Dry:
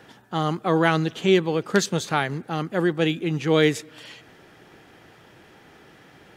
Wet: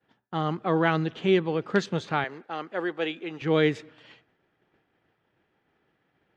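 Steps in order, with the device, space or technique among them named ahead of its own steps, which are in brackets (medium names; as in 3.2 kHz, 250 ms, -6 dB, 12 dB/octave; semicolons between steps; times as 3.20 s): 2.24–3.42 s: high-pass 420 Hz 12 dB/octave; hearing-loss simulation (low-pass 3.3 kHz 12 dB/octave; expander -39 dBFS); trim -3.5 dB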